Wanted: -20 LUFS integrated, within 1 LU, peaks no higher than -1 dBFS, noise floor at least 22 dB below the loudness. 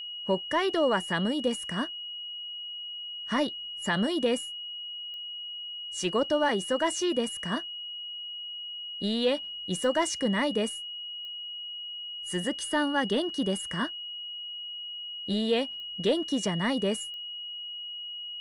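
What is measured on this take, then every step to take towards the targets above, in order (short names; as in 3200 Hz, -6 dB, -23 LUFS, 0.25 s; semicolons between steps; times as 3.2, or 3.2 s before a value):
clicks 5; steady tone 2900 Hz; tone level -36 dBFS; loudness -30.0 LUFS; peak -15.0 dBFS; loudness target -20.0 LUFS
-> de-click; notch 2900 Hz, Q 30; gain +10 dB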